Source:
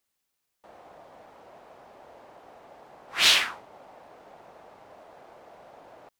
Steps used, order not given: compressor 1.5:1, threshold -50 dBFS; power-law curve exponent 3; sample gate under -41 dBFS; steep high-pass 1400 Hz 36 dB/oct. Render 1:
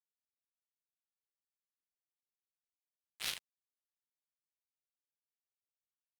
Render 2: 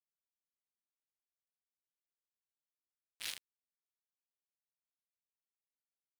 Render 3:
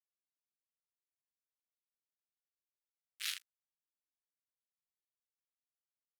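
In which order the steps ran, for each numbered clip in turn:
steep high-pass > power-law curve > sample gate > compressor; compressor > power-law curve > steep high-pass > sample gate; power-law curve > sample gate > compressor > steep high-pass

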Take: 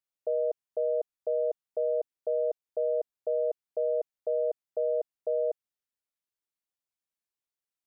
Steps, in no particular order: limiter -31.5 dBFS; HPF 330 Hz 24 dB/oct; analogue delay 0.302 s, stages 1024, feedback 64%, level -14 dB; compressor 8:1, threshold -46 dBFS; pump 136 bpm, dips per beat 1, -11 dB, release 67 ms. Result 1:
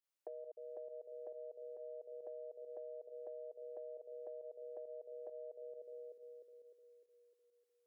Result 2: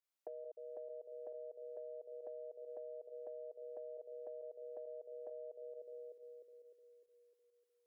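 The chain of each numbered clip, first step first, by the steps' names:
analogue delay > limiter > compressor > HPF > pump; analogue delay > pump > HPF > limiter > compressor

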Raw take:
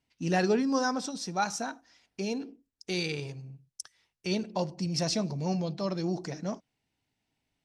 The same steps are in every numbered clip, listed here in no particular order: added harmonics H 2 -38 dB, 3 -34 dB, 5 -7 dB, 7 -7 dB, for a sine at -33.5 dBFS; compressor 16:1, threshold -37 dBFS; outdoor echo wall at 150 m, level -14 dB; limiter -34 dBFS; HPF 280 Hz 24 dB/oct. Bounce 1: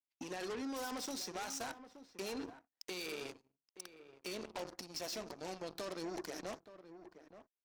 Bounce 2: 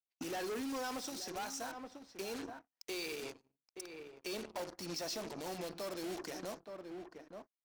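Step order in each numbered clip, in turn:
limiter > HPF > added harmonics > outdoor echo > compressor; HPF > added harmonics > outdoor echo > limiter > compressor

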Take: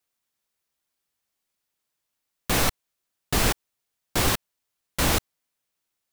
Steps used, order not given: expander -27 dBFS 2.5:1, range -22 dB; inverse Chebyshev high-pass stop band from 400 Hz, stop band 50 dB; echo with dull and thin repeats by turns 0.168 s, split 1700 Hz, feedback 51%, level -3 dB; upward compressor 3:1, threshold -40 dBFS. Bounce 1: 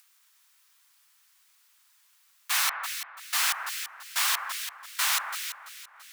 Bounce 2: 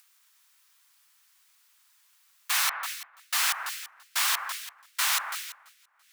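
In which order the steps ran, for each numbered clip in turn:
inverse Chebyshev high-pass > expander > echo with dull and thin repeats by turns > upward compressor; echo with dull and thin repeats by turns > expander > upward compressor > inverse Chebyshev high-pass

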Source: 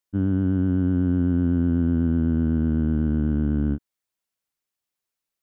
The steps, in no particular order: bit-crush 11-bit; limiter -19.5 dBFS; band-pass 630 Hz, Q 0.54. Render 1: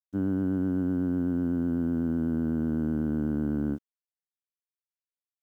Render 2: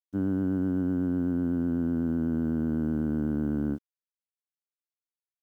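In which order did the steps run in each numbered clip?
band-pass > limiter > bit-crush; band-pass > bit-crush > limiter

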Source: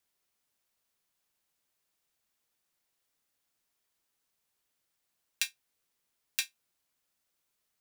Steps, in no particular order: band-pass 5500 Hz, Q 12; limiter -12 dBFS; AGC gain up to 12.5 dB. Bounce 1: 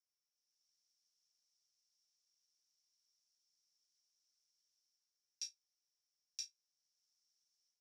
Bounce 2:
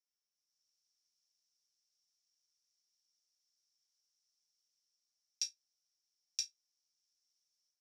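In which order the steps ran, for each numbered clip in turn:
AGC > limiter > band-pass; limiter > AGC > band-pass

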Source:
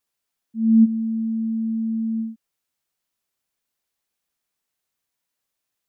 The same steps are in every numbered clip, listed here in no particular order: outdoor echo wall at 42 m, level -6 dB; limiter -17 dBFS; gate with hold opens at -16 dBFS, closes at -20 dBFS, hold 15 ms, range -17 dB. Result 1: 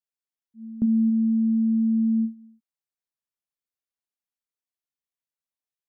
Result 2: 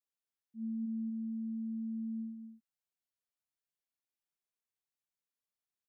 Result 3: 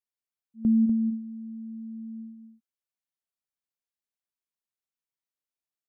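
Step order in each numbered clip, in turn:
limiter > outdoor echo > gate with hold; limiter > gate with hold > outdoor echo; gate with hold > limiter > outdoor echo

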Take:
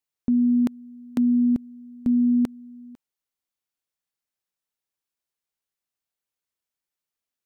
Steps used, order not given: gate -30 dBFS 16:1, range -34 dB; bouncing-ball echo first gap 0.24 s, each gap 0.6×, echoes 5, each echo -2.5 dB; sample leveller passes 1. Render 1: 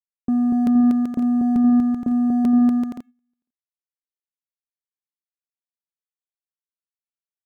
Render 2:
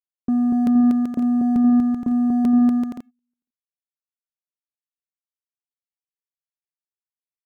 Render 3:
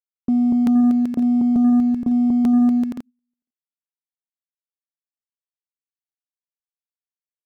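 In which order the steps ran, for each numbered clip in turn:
sample leveller > gate > bouncing-ball echo; gate > sample leveller > bouncing-ball echo; gate > bouncing-ball echo > sample leveller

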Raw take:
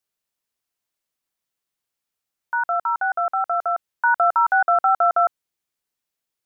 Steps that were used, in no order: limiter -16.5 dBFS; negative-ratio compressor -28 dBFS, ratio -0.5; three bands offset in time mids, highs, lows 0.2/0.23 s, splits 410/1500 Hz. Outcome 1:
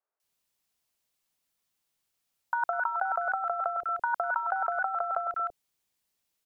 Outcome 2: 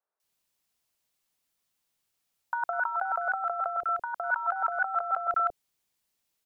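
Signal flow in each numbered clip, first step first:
limiter > three bands offset in time > negative-ratio compressor; three bands offset in time > limiter > negative-ratio compressor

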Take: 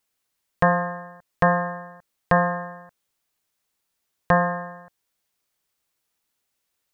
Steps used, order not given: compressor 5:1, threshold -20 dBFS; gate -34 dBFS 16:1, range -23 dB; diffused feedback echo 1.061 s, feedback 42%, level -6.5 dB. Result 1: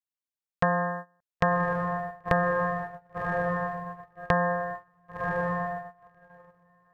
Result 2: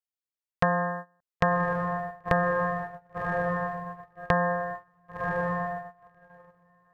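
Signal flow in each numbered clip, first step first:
diffused feedback echo > compressor > gate; diffused feedback echo > gate > compressor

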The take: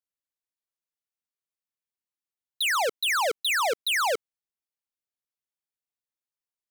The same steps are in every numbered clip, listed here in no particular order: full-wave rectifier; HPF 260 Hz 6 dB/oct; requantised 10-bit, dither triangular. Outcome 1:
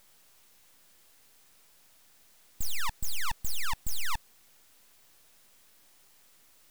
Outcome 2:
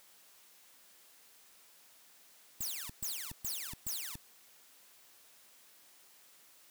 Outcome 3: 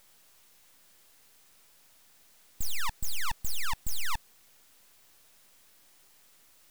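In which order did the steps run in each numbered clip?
requantised > HPF > full-wave rectifier; requantised > full-wave rectifier > HPF; HPF > requantised > full-wave rectifier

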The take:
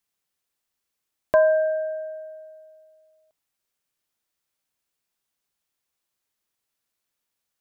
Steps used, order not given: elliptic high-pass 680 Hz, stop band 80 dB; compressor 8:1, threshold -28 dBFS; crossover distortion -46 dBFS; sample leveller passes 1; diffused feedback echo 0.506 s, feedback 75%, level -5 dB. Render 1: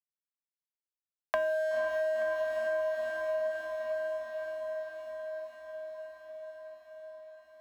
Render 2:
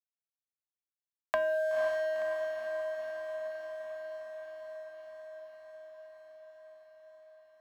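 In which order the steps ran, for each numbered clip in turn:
elliptic high-pass > crossover distortion > sample leveller > diffused feedback echo > compressor; elliptic high-pass > sample leveller > crossover distortion > compressor > diffused feedback echo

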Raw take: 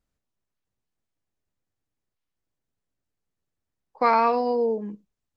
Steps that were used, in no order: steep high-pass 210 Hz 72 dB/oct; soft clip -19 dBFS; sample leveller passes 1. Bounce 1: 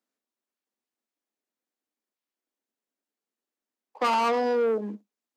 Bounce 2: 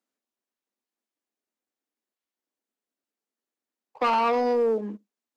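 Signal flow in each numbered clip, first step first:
soft clip > sample leveller > steep high-pass; soft clip > steep high-pass > sample leveller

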